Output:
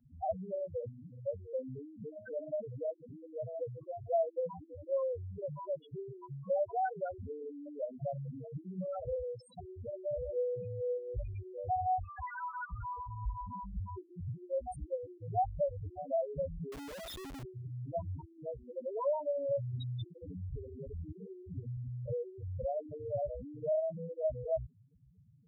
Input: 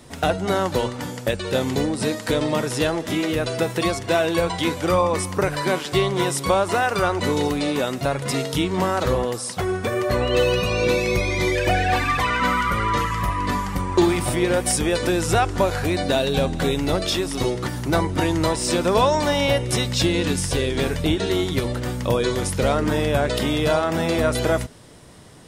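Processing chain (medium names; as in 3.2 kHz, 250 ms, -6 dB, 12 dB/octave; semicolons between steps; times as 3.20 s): loudest bins only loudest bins 2; static phaser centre 1.7 kHz, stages 8; 16.72–17.43 s: Schmitt trigger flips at -49.5 dBFS; trim -7.5 dB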